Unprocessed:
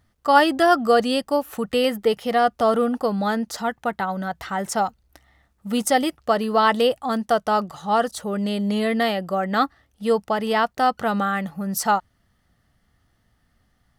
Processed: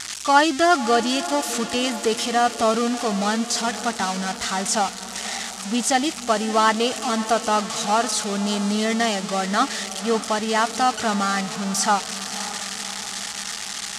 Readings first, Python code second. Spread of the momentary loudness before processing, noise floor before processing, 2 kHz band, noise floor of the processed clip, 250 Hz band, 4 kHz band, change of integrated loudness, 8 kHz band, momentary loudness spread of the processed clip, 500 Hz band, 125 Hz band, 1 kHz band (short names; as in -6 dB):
9 LU, -67 dBFS, +1.5 dB, -33 dBFS, 0.0 dB, +5.5 dB, 0.0 dB, +11.0 dB, 9 LU, -2.5 dB, +0.5 dB, 0.0 dB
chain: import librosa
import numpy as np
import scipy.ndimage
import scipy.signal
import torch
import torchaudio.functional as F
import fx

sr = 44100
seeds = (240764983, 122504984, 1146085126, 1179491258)

p1 = x + 0.5 * 10.0 ** (-12.5 / 20.0) * np.diff(np.sign(x), prepend=np.sign(x[:1]))
p2 = scipy.signal.sosfilt(scipy.signal.butter(4, 7700.0, 'lowpass', fs=sr, output='sos'), p1)
p3 = fx.peak_eq(p2, sr, hz=520.0, db=-10.5, octaves=0.22)
y = p3 + fx.echo_diffused(p3, sr, ms=565, feedback_pct=62, wet_db=-13.5, dry=0)